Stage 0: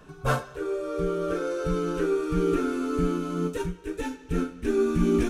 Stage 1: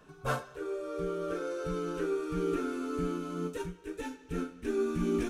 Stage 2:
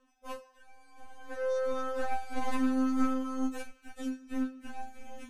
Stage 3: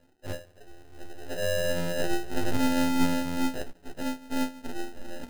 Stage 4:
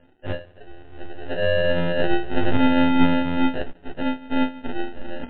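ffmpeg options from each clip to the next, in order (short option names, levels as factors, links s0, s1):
-af "lowshelf=f=140:g=-6.5,volume=0.501"
-af "dynaudnorm=f=290:g=9:m=2.82,aeval=exprs='0.251*(cos(1*acos(clip(val(0)/0.251,-1,1)))-cos(1*PI/2))+0.0708*(cos(2*acos(clip(val(0)/0.251,-1,1)))-cos(2*PI/2))+0.0708*(cos(3*acos(clip(val(0)/0.251,-1,1)))-cos(3*PI/2))+0.0112*(cos(5*acos(clip(val(0)/0.251,-1,1)))-cos(5*PI/2))':c=same,afftfilt=real='re*3.46*eq(mod(b,12),0)':imag='im*3.46*eq(mod(b,12),0)':win_size=2048:overlap=0.75"
-filter_complex "[0:a]aeval=exprs='if(lt(val(0),0),0.251*val(0),val(0))':c=same,asplit=2[s0][s1];[s1]acompressor=threshold=0.0141:ratio=6,volume=0.75[s2];[s0][s2]amix=inputs=2:normalize=0,acrusher=samples=39:mix=1:aa=0.000001,volume=1.41"
-af "volume=2.51" -ar 8000 -c:a libmp3lame -b:a 64k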